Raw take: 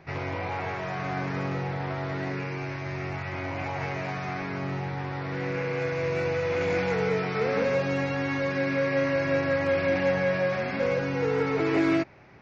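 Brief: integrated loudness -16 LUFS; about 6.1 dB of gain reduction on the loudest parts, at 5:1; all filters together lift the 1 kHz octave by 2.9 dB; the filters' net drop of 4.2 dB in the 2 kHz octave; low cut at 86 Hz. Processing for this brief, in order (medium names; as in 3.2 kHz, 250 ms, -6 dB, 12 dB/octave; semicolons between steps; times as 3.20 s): high-pass 86 Hz; peaking EQ 1 kHz +5.5 dB; peaking EQ 2 kHz -7 dB; compression 5:1, threshold -27 dBFS; trim +15.5 dB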